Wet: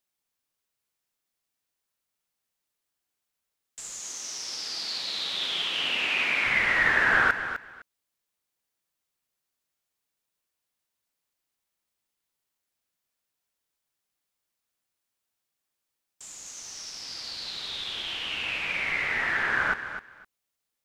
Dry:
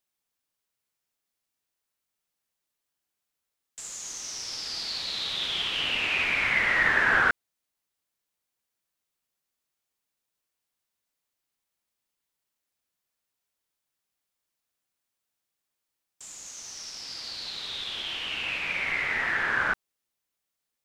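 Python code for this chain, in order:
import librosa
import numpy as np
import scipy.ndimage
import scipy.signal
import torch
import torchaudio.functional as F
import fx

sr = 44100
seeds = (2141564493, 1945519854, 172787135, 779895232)

y = fx.highpass(x, sr, hz=180.0, slope=12, at=(4.01, 6.46))
y = fx.echo_feedback(y, sr, ms=255, feedback_pct=18, wet_db=-10.5)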